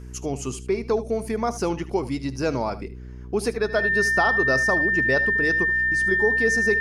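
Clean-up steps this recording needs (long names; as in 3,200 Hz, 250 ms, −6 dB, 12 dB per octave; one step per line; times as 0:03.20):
hum removal 62 Hz, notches 7
notch filter 1,800 Hz, Q 30
echo removal 76 ms −15.5 dB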